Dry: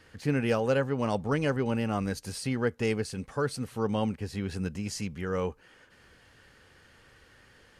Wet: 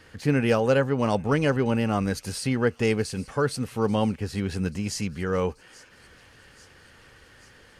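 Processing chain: thin delay 0.835 s, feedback 63%, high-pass 2800 Hz, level -18.5 dB; gain +5 dB

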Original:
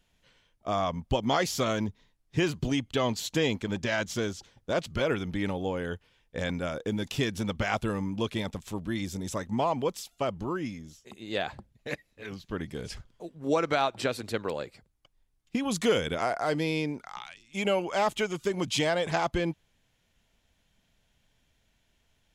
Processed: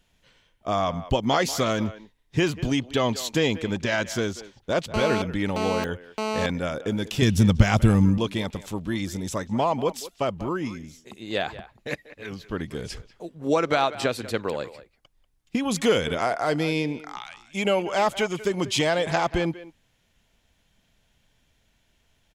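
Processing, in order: 7.22–8.18 tone controls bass +14 dB, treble +7 dB; speakerphone echo 0.19 s, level -15 dB; 4.94–6.46 GSM buzz -31 dBFS; gain +4 dB

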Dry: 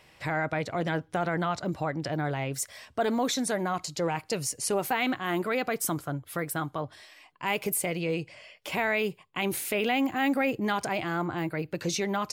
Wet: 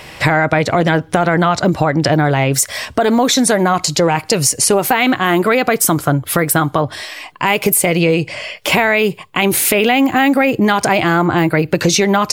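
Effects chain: compressor, threshold -33 dBFS, peak gain reduction 10.5 dB; maximiser +24 dB; gain -1 dB

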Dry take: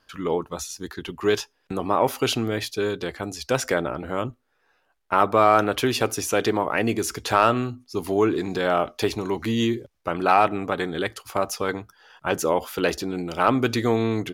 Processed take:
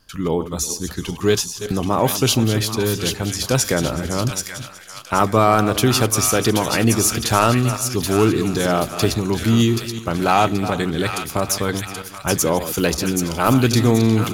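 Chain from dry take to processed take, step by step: regenerating reverse delay 0.185 s, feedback 40%, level -11.5 dB; tone controls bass +12 dB, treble +11 dB; thin delay 0.779 s, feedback 39%, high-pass 1600 Hz, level -4.5 dB; gain +1 dB

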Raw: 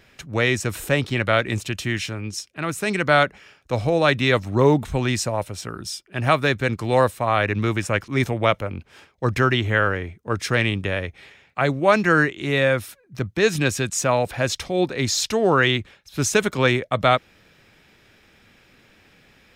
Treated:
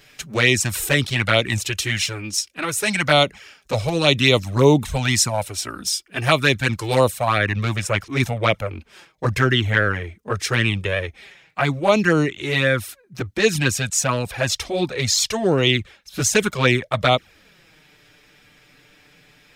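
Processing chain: high shelf 2500 Hz +10.5 dB, from 7.38 s +5 dB; envelope flanger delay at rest 7 ms, full sweep at -11.5 dBFS; gain +3 dB

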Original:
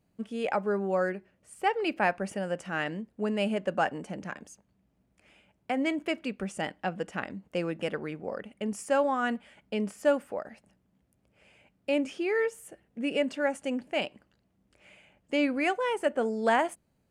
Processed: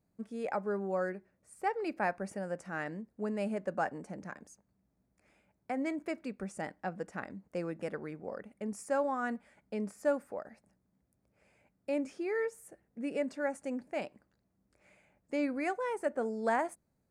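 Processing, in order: bell 3000 Hz -14.5 dB 0.44 oct; gain -5.5 dB

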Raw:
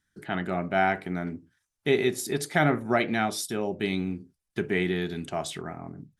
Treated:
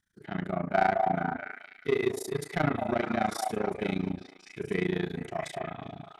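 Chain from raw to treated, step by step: sine folder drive 4 dB, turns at -8.5 dBFS; harmonic-percussive split percussive -11 dB; AM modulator 28 Hz, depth 95%; on a send: delay with a stepping band-pass 0.216 s, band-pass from 700 Hz, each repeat 0.7 oct, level -2.5 dB; on the sum: dynamic EQ 1000 Hz, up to +5 dB, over -37 dBFS, Q 1.1; in parallel at -6 dB: soft clip -21.5 dBFS, distortion -8 dB; on the sum: gain -7.5 dB

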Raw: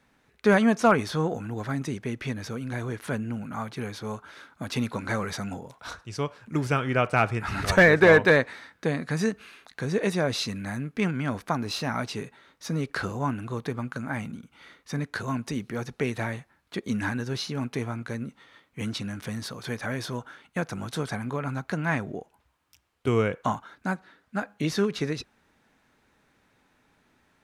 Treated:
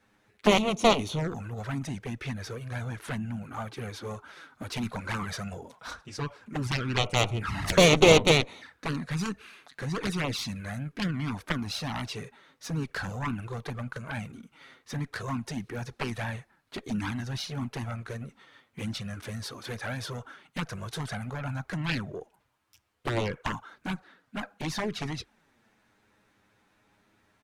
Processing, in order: added harmonics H 2 -7 dB, 3 -19 dB, 5 -18 dB, 7 -9 dB, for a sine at -6 dBFS; envelope flanger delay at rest 10.1 ms, full sweep at -23 dBFS; harmoniser -3 st -16 dB

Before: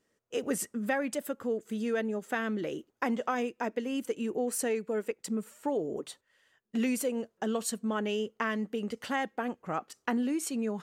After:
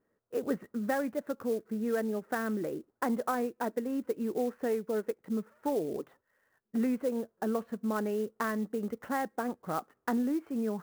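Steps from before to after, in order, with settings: LPF 1700 Hz 24 dB/oct; clock jitter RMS 0.026 ms

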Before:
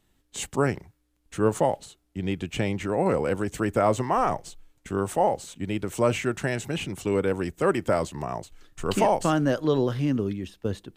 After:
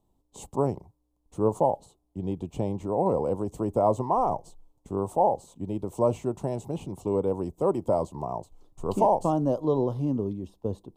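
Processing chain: EQ curve 310 Hz 0 dB, 1000 Hz +4 dB, 1600 Hz -27 dB, 3500 Hz -13 dB, 9100 Hz -8 dB; gain -2.5 dB

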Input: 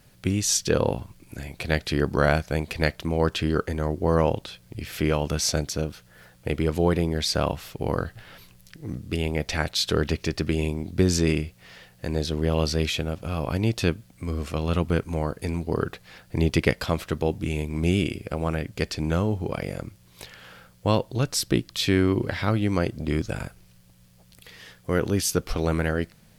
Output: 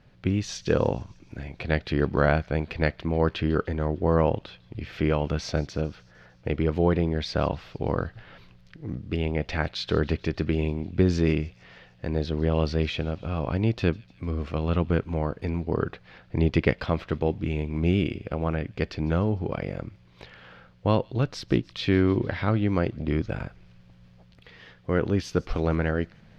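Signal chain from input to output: reverse; upward compressor, threshold -45 dBFS; reverse; air absorption 240 m; thin delay 0.151 s, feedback 64%, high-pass 3000 Hz, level -20 dB

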